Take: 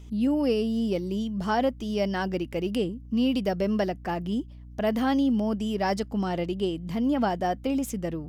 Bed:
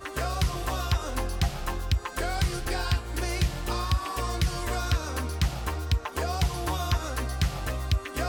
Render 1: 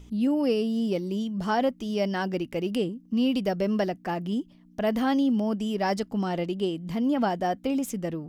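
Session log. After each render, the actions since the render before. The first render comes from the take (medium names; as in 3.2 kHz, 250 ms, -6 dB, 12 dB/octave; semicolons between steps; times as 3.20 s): de-hum 60 Hz, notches 2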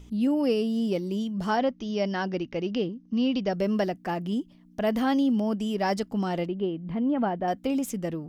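1.56–3.53 s: Chebyshev low-pass 6.5 kHz, order 8; 6.48–7.48 s: distance through air 440 m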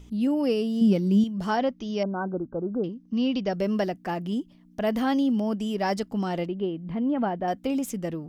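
0.81–1.24 s: small resonant body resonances 200/1500 Hz, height 11 dB; 2.03–2.84 s: brick-wall FIR low-pass 1.6 kHz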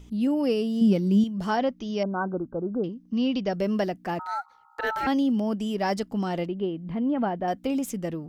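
2.07–2.54 s: dynamic bell 1.2 kHz, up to +5 dB, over -46 dBFS, Q 1.6; 4.19–5.07 s: ring modulator 1.1 kHz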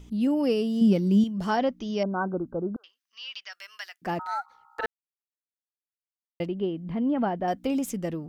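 2.76–4.02 s: high-pass 1.4 kHz 24 dB/octave; 4.86–6.40 s: mute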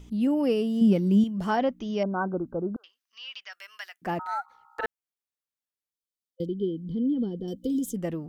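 5.90–7.96 s: time-frequency box 530–3000 Hz -26 dB; dynamic bell 4.8 kHz, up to -6 dB, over -57 dBFS, Q 1.6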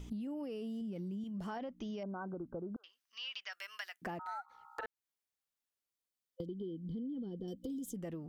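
peak limiter -23 dBFS, peak gain reduction 11 dB; compression 6:1, threshold -40 dBFS, peak gain reduction 13.5 dB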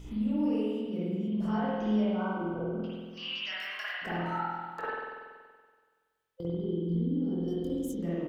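doubling 23 ms -6.5 dB; spring tank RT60 1.6 s, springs 47 ms, chirp 65 ms, DRR -8.5 dB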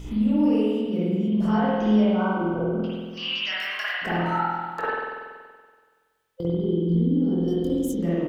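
trim +8.5 dB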